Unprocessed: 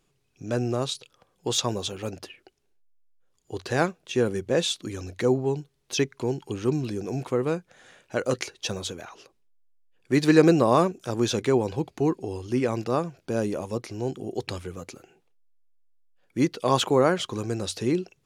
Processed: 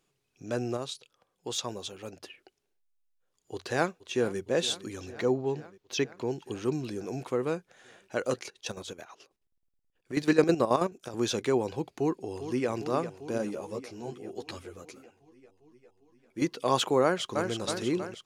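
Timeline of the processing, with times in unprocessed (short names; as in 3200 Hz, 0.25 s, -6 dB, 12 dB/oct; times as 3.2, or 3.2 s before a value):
0.77–2.24 gain -4.5 dB
3.54–4.39 echo throw 0.46 s, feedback 75%, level -17 dB
5.12–6.31 bell 9600 Hz -11.5 dB 0.72 oct
8.34–11.14 chopper 9.3 Hz, depth 65%
11.95–12.69 echo throw 0.4 s, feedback 75%, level -10.5 dB
13.38–16.42 ensemble effect
17.03–17.5 echo throw 0.32 s, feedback 60%, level -4.5 dB
whole clip: low shelf 150 Hz -9 dB; gain -3 dB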